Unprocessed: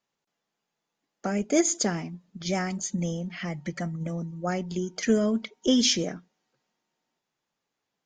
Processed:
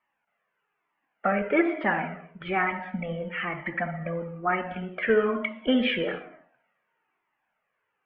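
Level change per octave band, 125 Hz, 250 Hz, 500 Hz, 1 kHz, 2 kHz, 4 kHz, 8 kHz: -4.5 dB, -2.5 dB, +2.5 dB, +7.5 dB, +9.0 dB, -6.0 dB, under -40 dB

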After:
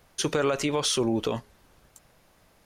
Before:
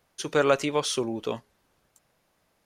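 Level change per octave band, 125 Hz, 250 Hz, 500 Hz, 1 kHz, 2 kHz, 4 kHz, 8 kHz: +4.0 dB, +3.0 dB, -1.5 dB, -2.5 dB, -2.5 dB, +3.0 dB, +4.0 dB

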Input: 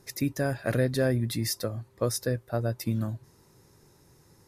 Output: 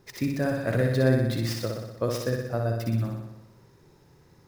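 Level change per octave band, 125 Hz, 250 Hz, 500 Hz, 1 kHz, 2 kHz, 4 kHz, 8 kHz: +3.0 dB, +2.5 dB, +2.5 dB, +2.5 dB, +2.0 dB, -1.0 dB, -6.5 dB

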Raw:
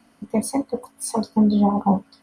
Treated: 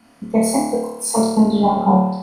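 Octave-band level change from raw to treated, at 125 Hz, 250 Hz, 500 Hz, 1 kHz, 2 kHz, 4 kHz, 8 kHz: +4.0 dB, +3.5 dB, +7.5 dB, +7.0 dB, no reading, +7.5 dB, +7.5 dB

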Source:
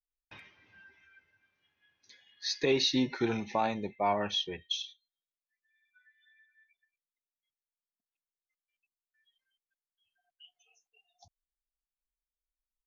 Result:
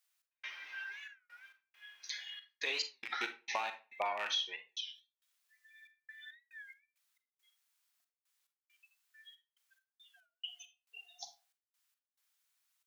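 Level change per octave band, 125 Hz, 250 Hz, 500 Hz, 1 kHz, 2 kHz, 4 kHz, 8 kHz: under -35 dB, -26.0 dB, -14.0 dB, -6.5 dB, +1.5 dB, -5.0 dB, no reading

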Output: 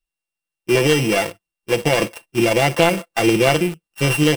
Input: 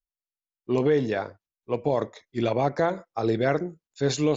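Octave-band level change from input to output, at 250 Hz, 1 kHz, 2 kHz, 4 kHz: +8.0 dB, +7.0 dB, +14.5 dB, +16.0 dB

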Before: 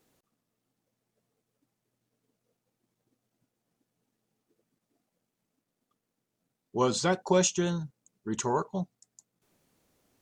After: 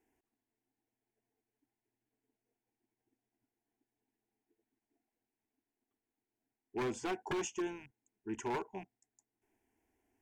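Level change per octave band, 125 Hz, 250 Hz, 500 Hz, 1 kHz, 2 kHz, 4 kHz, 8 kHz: -17.5 dB, -9.5 dB, -11.0 dB, -10.0 dB, -7.0 dB, -14.5 dB, -15.5 dB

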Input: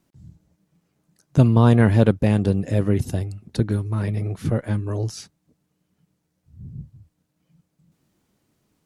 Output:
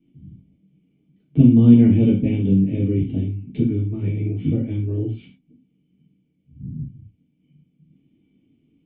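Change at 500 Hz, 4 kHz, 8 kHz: -4.5 dB, no reading, under -35 dB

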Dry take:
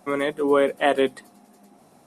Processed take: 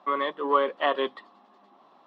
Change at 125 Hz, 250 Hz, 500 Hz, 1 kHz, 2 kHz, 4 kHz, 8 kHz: under -15 dB, -10.0 dB, -6.5 dB, +1.5 dB, -4.5 dB, -1.5 dB, no reading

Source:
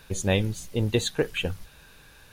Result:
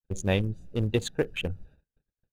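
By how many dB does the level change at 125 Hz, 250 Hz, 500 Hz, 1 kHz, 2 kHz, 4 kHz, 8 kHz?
-1.5 dB, -2.0 dB, -2.5 dB, -2.5 dB, -3.5 dB, -5.5 dB, -7.5 dB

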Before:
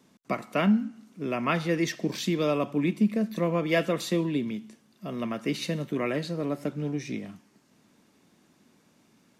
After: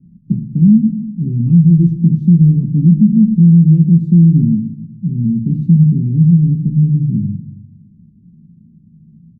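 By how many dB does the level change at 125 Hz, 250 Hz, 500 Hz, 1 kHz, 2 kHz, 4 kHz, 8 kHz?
+25.0 dB, +17.0 dB, no reading, under -30 dB, under -35 dB, under -35 dB, under -30 dB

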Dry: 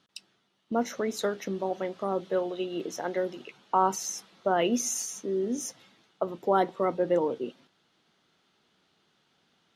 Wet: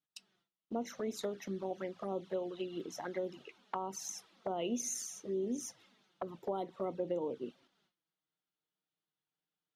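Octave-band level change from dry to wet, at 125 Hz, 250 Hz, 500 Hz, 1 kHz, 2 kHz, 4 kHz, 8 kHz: -8.0 dB, -8.5 dB, -10.0 dB, -14.0 dB, -13.0 dB, -9.5 dB, -8.0 dB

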